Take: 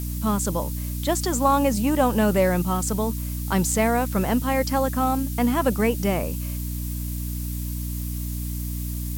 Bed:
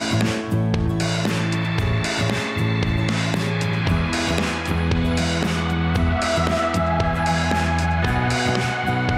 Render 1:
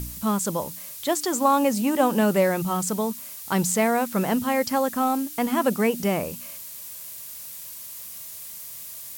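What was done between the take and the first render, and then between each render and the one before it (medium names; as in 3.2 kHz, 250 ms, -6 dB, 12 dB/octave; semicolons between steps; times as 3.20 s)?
de-hum 60 Hz, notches 5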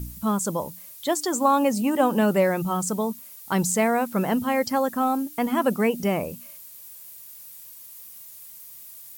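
noise reduction 9 dB, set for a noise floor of -39 dBFS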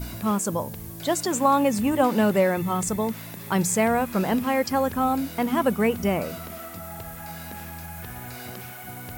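add bed -18.5 dB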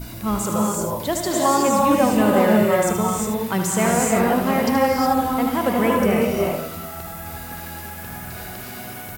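on a send: delay 76 ms -8.5 dB; on the sum: gated-style reverb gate 390 ms rising, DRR -2 dB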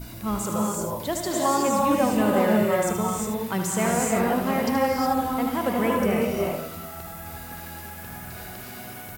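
trim -4.5 dB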